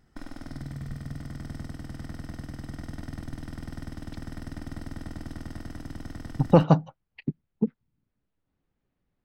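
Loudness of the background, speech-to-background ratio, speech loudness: -40.0 LUFS, 16.5 dB, -23.5 LUFS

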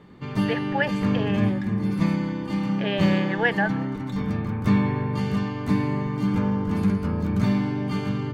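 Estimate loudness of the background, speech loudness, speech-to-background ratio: -25.0 LUFS, -28.0 LUFS, -3.0 dB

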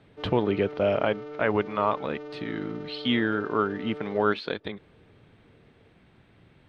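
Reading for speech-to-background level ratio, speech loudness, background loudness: 12.5 dB, -27.5 LUFS, -40.0 LUFS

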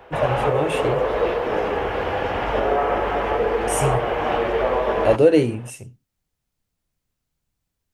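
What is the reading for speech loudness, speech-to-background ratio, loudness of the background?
-22.0 LUFS, 0.0 dB, -22.0 LUFS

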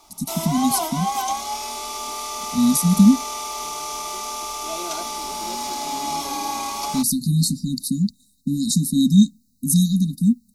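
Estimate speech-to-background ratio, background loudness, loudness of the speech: 7.0 dB, -27.0 LUFS, -20.0 LUFS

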